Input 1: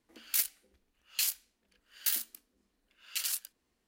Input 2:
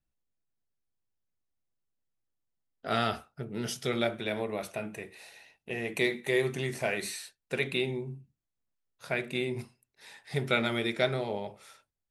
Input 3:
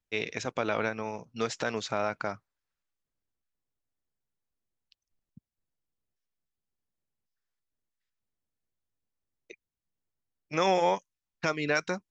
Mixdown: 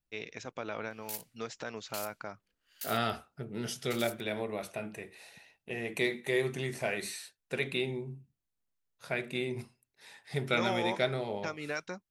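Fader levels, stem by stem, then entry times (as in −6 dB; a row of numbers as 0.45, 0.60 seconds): −11.5, −2.5, −9.0 decibels; 0.75, 0.00, 0.00 seconds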